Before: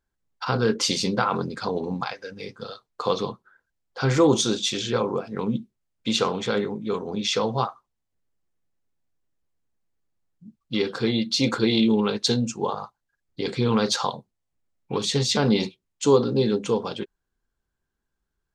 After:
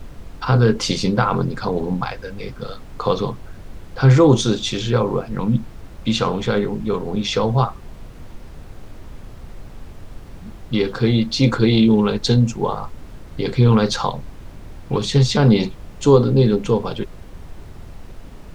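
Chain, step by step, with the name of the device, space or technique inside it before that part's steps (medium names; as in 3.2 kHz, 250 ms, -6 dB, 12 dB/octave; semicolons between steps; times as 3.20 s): 5.32–6.27 s: peaking EQ 410 Hz -12 dB 0.23 oct; car interior (peaking EQ 120 Hz +9 dB 0.84 oct; treble shelf 4.2 kHz -8 dB; brown noise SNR 14 dB); trim +4.5 dB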